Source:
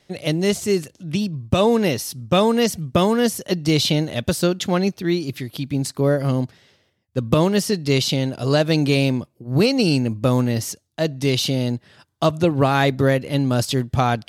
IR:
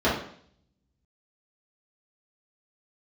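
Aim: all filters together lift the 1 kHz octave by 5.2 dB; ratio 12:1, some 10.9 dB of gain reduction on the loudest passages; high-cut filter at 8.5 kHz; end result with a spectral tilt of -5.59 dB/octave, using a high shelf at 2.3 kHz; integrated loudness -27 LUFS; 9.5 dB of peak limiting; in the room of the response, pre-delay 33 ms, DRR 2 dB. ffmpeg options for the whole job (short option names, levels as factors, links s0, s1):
-filter_complex "[0:a]lowpass=8500,equalizer=f=1000:t=o:g=6,highshelf=f=2300:g=5,acompressor=threshold=0.0891:ratio=12,alimiter=limit=0.133:level=0:latency=1,asplit=2[s0][s1];[1:a]atrim=start_sample=2205,adelay=33[s2];[s1][s2]afir=irnorm=-1:irlink=0,volume=0.112[s3];[s0][s3]amix=inputs=2:normalize=0,volume=0.75"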